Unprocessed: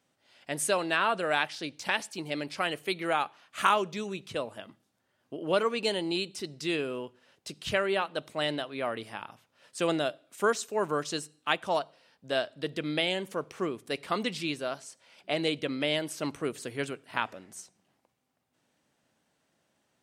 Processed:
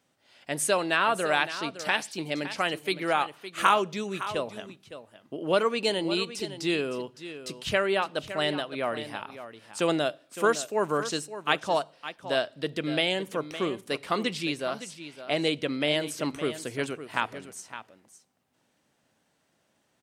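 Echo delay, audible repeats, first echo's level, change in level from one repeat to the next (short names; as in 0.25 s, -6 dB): 0.562 s, 1, -12.5 dB, no steady repeat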